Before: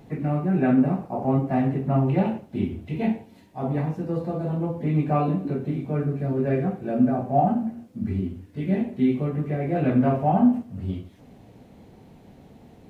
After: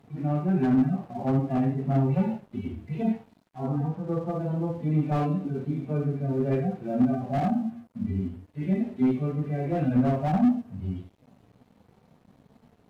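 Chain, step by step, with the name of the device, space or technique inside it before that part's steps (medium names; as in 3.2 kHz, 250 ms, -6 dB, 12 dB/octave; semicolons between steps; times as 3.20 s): harmonic-percussive separation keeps harmonic; 3.59–4.39 s: resonant high shelf 1.6 kHz -8.5 dB, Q 3; early transistor amplifier (crossover distortion -53 dBFS; slew-rate limiter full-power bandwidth 43 Hz); trim -1.5 dB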